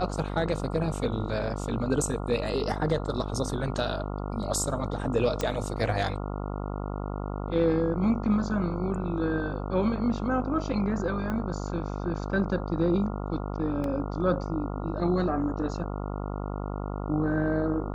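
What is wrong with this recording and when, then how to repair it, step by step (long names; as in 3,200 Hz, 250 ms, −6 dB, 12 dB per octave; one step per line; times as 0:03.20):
mains buzz 50 Hz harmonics 28 −33 dBFS
0:05.41: click −14 dBFS
0:11.30: click −20 dBFS
0:13.84: drop-out 2.3 ms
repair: click removal
hum removal 50 Hz, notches 28
repair the gap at 0:13.84, 2.3 ms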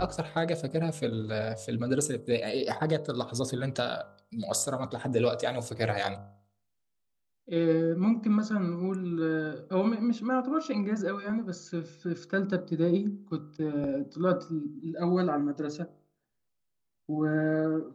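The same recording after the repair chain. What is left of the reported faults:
0:05.41: click
0:11.30: click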